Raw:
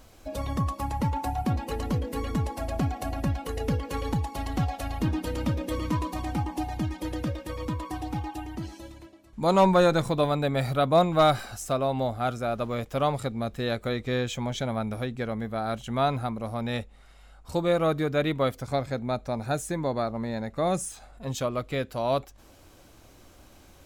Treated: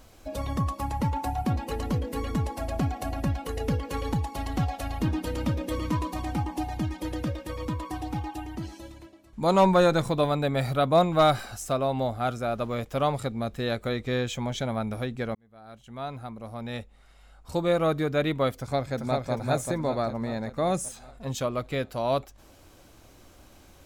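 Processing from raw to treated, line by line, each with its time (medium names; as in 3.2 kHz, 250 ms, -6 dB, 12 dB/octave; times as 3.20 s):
15.35–17.69 s: fade in
18.58–19.32 s: echo throw 390 ms, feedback 55%, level -3 dB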